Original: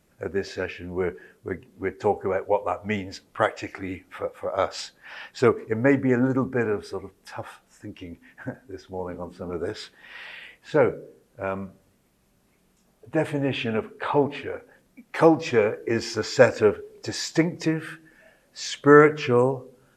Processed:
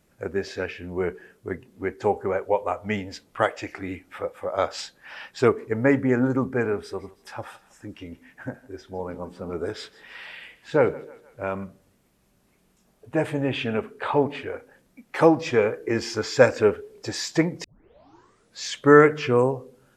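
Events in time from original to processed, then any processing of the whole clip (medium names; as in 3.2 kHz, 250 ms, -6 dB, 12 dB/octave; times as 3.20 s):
6.77–11.64 s: thinning echo 159 ms, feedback 55%, level -20 dB
17.64 s: tape start 0.99 s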